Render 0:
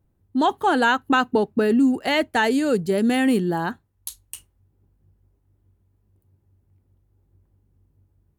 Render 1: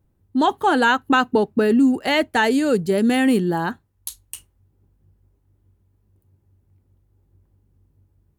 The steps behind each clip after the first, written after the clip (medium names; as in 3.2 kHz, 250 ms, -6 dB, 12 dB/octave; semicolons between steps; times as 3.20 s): band-stop 700 Hz, Q 22; trim +2 dB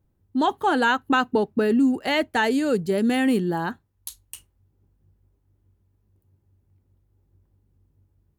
peaking EQ 9.3 kHz -2 dB; trim -3.5 dB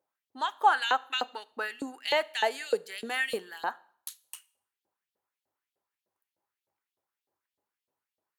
LFO high-pass saw up 3.3 Hz 520–4000 Hz; on a send at -20.5 dB: reverberation RT60 0.55 s, pre-delay 27 ms; on the sum: trim -5 dB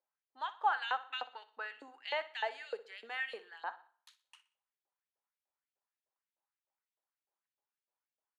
band-pass 610–3200 Hz; feedback delay 61 ms, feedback 36%, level -16.5 dB; trim -7.5 dB